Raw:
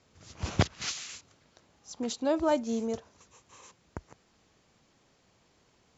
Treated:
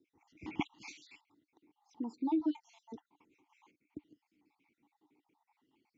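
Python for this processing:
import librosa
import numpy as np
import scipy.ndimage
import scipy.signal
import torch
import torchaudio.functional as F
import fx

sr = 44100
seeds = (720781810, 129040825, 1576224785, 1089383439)

y = fx.spec_dropout(x, sr, seeds[0], share_pct=56)
y = fx.vowel_filter(y, sr, vowel='u')
y = fx.bell_lfo(y, sr, hz=0.58, low_hz=380.0, high_hz=5900.0, db=8)
y = y * 10.0 ** (5.5 / 20.0)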